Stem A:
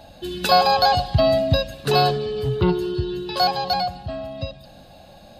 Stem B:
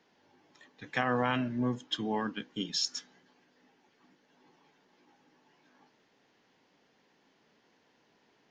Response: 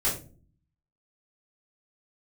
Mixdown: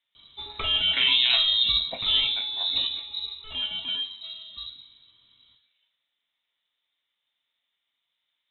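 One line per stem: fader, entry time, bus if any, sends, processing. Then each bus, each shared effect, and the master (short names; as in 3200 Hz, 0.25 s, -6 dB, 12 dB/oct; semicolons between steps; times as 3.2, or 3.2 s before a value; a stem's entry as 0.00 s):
-0.5 dB, 0.15 s, send -20 dB, limiter -11 dBFS, peak gain reduction 6.5 dB; auto duck -11 dB, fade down 0.95 s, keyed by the second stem
+1.5 dB, 0.00 s, send -13 dB, LPF 2400 Hz 12 dB/oct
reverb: on, RT60 0.40 s, pre-delay 3 ms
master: inverted band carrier 3900 Hz; three-band expander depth 40%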